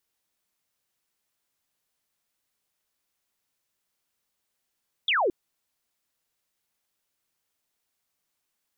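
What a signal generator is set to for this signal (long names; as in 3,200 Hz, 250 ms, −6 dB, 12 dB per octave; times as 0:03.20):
single falling chirp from 3,700 Hz, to 320 Hz, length 0.22 s sine, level −20.5 dB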